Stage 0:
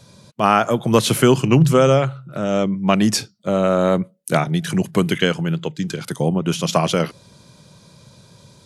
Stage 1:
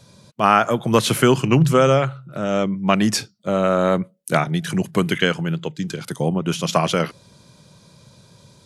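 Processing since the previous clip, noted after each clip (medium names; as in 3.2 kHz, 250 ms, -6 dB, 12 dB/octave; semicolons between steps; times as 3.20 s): dynamic bell 1.6 kHz, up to +4 dB, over -30 dBFS, Q 0.85; trim -2 dB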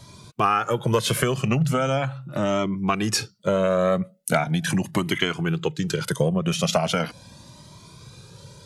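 compression 6:1, threshold -22 dBFS, peak gain reduction 12.5 dB; Shepard-style flanger rising 0.39 Hz; trim +8.5 dB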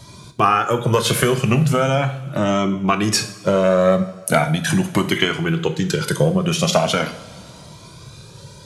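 two-slope reverb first 0.53 s, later 3 s, from -18 dB, DRR 7 dB; trim +4.5 dB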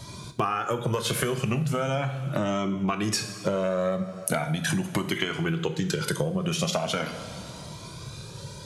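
compression 6:1, threshold -24 dBFS, peak gain reduction 13 dB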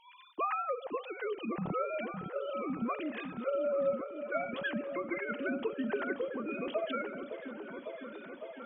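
formants replaced by sine waves; on a send: delay with an opening low-pass 556 ms, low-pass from 400 Hz, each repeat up 1 oct, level -6 dB; on the sum: trim -9 dB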